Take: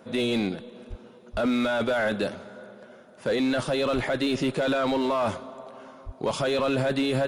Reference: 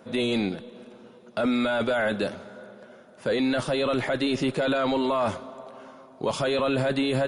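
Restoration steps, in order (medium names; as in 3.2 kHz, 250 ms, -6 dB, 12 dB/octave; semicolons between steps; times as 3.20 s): clip repair -19 dBFS; de-plosive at 0.89/1.32/3.94/6.05 s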